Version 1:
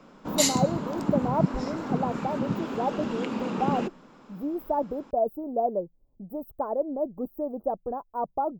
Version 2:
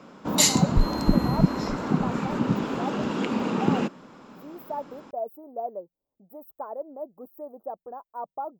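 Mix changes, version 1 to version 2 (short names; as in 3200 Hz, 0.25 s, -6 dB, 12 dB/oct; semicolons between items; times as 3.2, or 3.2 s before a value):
speech: add HPF 1200 Hz 6 dB/oct; first sound +4.5 dB; second sound: unmuted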